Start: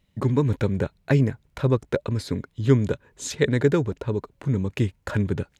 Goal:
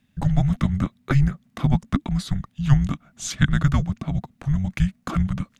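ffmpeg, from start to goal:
-af "afreqshift=-280,volume=2dB"

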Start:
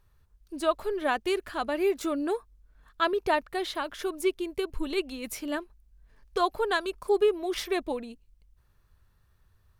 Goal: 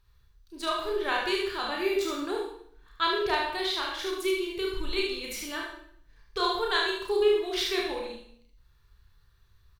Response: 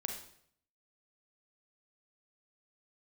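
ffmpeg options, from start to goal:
-filter_complex "[0:a]equalizer=f=250:t=o:w=0.67:g=-10,equalizer=f=630:t=o:w=0.67:g=-9,equalizer=f=4k:t=o:w=0.67:g=7,equalizer=f=10k:t=o:w=0.67:g=-5,aecho=1:1:31|74:0.668|0.596[a];[1:a]atrim=start_sample=2205[b];[a][b]afir=irnorm=-1:irlink=0"

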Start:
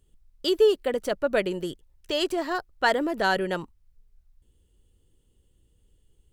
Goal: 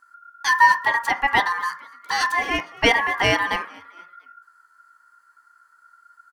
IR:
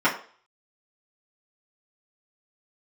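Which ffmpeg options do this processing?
-filter_complex "[0:a]aeval=exprs='val(0)*sin(2*PI*1400*n/s)':c=same,asplit=4[a][b][c][d];[b]adelay=230,afreqshift=78,volume=-23dB[e];[c]adelay=460,afreqshift=156,volume=-29.6dB[f];[d]adelay=690,afreqshift=234,volume=-36.1dB[g];[a][e][f][g]amix=inputs=4:normalize=0,asplit=2[h][i];[1:a]atrim=start_sample=2205[j];[i][j]afir=irnorm=-1:irlink=0,volume=-22dB[k];[h][k]amix=inputs=2:normalize=0,volume=5.5dB"

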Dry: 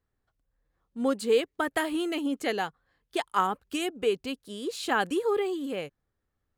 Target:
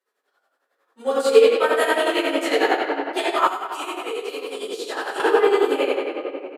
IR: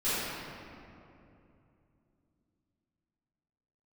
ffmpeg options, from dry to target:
-filter_complex "[0:a]highpass=f=430:w=0.5412,highpass=f=430:w=1.3066,asplit=2[a][b];[b]acompressor=threshold=-34dB:ratio=6,volume=1dB[c];[a][c]amix=inputs=2:normalize=0,aresample=32000,aresample=44100[d];[1:a]atrim=start_sample=2205[e];[d][e]afir=irnorm=-1:irlink=0,tremolo=f=11:d=0.64,asettb=1/sr,asplit=3[f][g][h];[f]atrim=end=3.474[i];[g]atrim=start=3.47:end=5.2,asetpts=PTS-STARTPTS,afade=t=in:d=0.004:c=qsin,afade=t=out:st=1.726:d=0.004:c=qsin,acrossover=split=2100|6000[j][k][l];[j]acompressor=threshold=-28dB:ratio=4[m];[k]acompressor=threshold=-40dB:ratio=4[n];[l]acompressor=threshold=-45dB:ratio=4[o];[m][n][o]amix=inputs=3:normalize=0[p];[h]atrim=start=5.196[q];[i][p]acrossfade=d=0.004:c1=hsin:c2=qsin[r];[r][q]acrossfade=d=0.004:c1=qsin:c2=hsin"

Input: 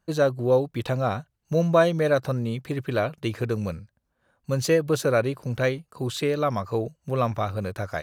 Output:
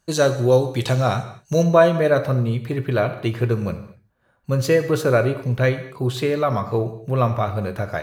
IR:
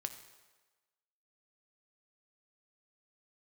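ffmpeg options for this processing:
-filter_complex "[0:a]asetnsamples=n=441:p=0,asendcmd='1.63 equalizer g -5.5',equalizer=f=7k:w=0.63:g=10.5[a];[1:a]atrim=start_sample=2205,afade=t=out:st=0.3:d=0.01,atrim=end_sample=13671[b];[a][b]afir=irnorm=-1:irlink=0,volume=6dB"

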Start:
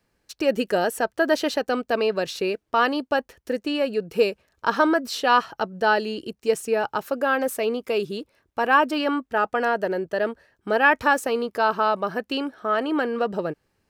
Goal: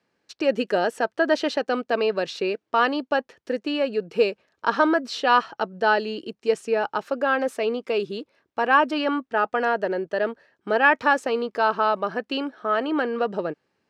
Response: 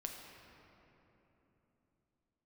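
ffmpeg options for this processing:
-af "highpass=180,lowpass=5.3k"

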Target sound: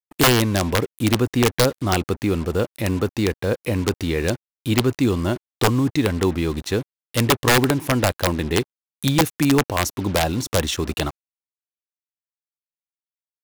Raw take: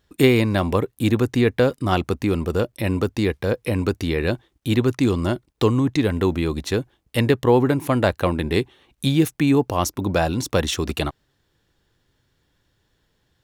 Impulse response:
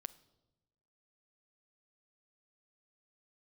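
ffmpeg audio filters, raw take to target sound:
-af "acrusher=bits=5:mix=0:aa=0.5,aeval=exprs='(mod(2.82*val(0)+1,2)-1)/2.82':c=same"

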